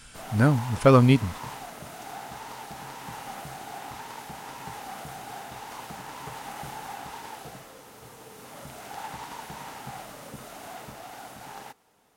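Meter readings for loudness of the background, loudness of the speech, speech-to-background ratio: −40.0 LKFS, −20.5 LKFS, 19.5 dB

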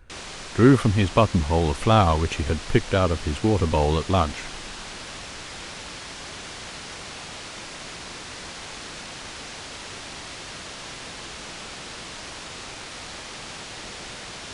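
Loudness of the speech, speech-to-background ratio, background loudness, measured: −21.5 LKFS, 14.0 dB, −35.5 LKFS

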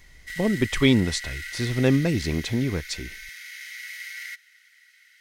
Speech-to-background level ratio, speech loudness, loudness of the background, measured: 12.0 dB, −24.0 LKFS, −36.0 LKFS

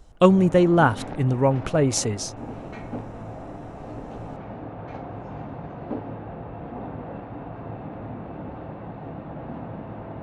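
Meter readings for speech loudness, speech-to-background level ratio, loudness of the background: −20.5 LKFS, 16.0 dB, −36.5 LKFS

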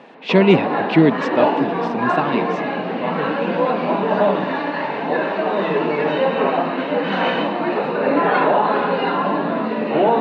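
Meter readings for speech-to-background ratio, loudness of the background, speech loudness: 1.0 dB, −20.0 LKFS, −19.0 LKFS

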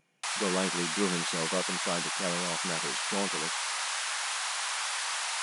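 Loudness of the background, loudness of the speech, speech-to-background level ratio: −31.0 LKFS, −35.5 LKFS, −4.5 dB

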